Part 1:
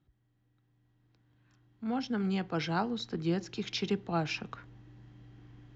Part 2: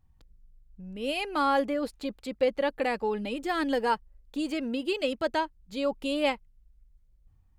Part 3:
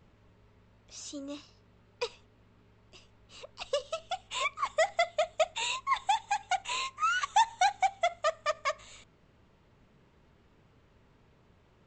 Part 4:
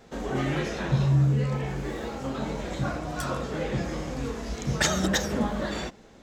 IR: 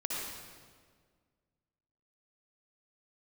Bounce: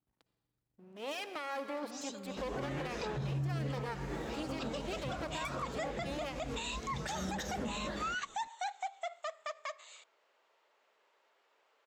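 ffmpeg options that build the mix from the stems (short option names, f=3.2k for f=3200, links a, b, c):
-filter_complex "[0:a]volume=-17.5dB[a];[1:a]aeval=exprs='max(val(0),0)':c=same,highpass=270,volume=-4.5dB,asplit=2[b][c];[c]volume=-12.5dB[d];[2:a]highpass=f=520:w=0.5412,highpass=f=520:w=1.3066,adelay=1000,volume=-2.5dB[e];[3:a]adelay=2250,volume=-6.5dB[f];[4:a]atrim=start_sample=2205[g];[d][g]afir=irnorm=-1:irlink=0[h];[a][b][e][f][h]amix=inputs=5:normalize=0,alimiter=level_in=5dB:limit=-24dB:level=0:latency=1:release=128,volume=-5dB"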